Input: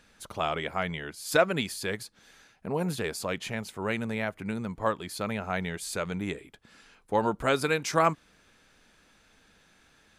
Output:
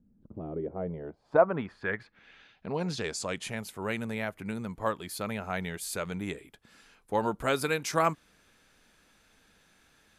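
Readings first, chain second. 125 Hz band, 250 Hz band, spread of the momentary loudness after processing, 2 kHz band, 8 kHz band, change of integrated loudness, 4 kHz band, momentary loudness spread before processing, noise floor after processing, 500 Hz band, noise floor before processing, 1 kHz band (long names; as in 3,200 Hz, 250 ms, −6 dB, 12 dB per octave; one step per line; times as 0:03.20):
−2.5 dB, −2.5 dB, 11 LU, −3.0 dB, −1.5 dB, −2.0 dB, −4.0 dB, 10 LU, −66 dBFS, −1.0 dB, −63 dBFS, −2.5 dB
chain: low-pass filter sweep 220 Hz → 13,000 Hz, 0:00.16–0:03.69
level −2.5 dB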